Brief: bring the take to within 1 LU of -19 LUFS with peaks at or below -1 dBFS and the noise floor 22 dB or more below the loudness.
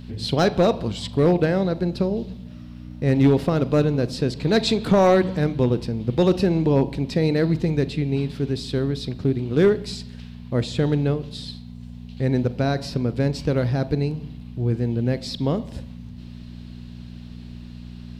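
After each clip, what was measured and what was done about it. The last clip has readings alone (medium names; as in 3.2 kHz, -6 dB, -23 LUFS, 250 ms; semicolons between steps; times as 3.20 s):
clipped samples 0.6%; clipping level -9.5 dBFS; hum 60 Hz; highest harmonic 240 Hz; hum level -35 dBFS; loudness -22.0 LUFS; peak level -9.5 dBFS; loudness target -19.0 LUFS
-> clip repair -9.5 dBFS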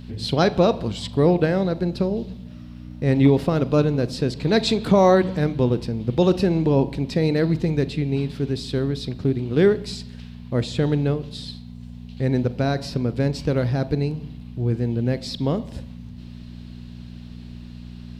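clipped samples 0.0%; hum 60 Hz; highest harmonic 240 Hz; hum level -35 dBFS
-> de-hum 60 Hz, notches 4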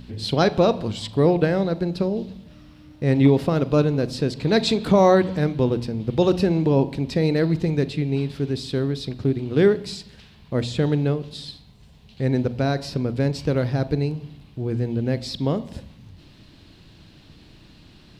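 hum not found; loudness -22.0 LUFS; peak level -4.5 dBFS; loudness target -19.0 LUFS
-> trim +3 dB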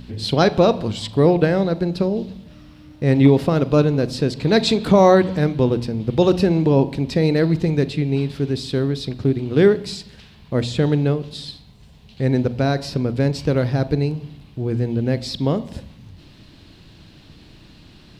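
loudness -19.0 LUFS; peak level -1.5 dBFS; noise floor -47 dBFS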